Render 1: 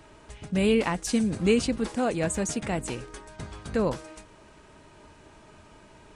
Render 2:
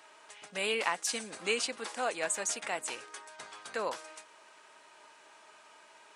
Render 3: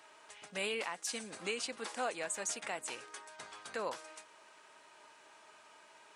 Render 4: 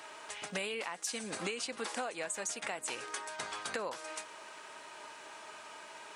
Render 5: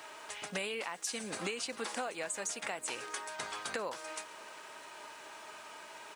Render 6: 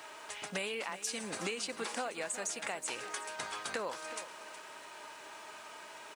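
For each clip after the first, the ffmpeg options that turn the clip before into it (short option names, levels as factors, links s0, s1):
-af "highpass=800"
-af "lowshelf=f=150:g=6.5,alimiter=limit=0.0708:level=0:latency=1:release=337,volume=0.75"
-af "acompressor=threshold=0.00631:ratio=12,volume=3.16"
-af "aecho=1:1:653:0.0631,acrusher=bits=10:mix=0:aa=0.000001"
-af "aecho=1:1:368:0.211"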